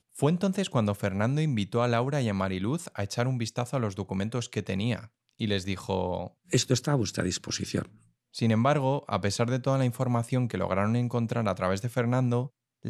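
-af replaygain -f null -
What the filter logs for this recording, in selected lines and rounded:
track_gain = +9.9 dB
track_peak = 0.203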